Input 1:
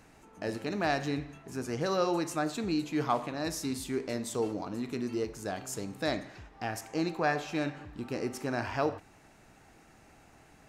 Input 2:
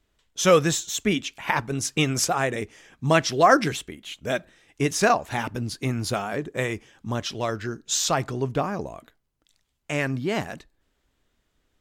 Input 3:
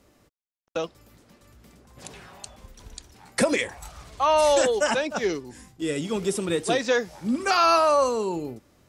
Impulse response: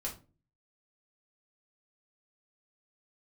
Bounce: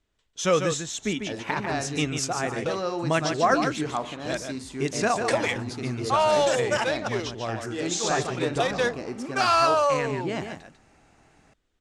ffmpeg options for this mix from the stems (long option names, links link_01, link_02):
-filter_complex "[0:a]adelay=850,volume=-0.5dB[link_01];[1:a]volume=-5dB,asplit=2[link_02][link_03];[link_03]volume=-7dB[link_04];[2:a]highpass=440,adynamicsmooth=sensitivity=7:basefreq=1900,adelay=1900,volume=-1dB[link_05];[link_04]aecho=0:1:146:1[link_06];[link_01][link_02][link_05][link_06]amix=inputs=4:normalize=0,lowpass=frequency=9300:width=0.5412,lowpass=frequency=9300:width=1.3066"